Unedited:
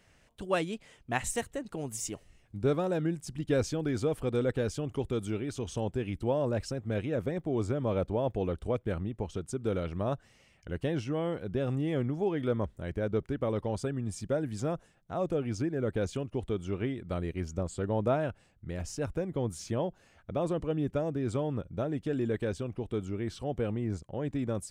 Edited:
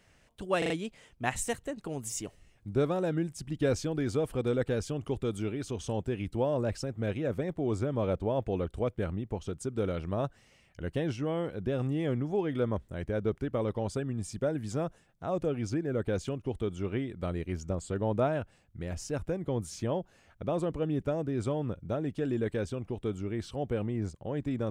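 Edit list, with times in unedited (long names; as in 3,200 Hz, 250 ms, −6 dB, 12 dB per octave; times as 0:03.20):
0:00.58: stutter 0.04 s, 4 plays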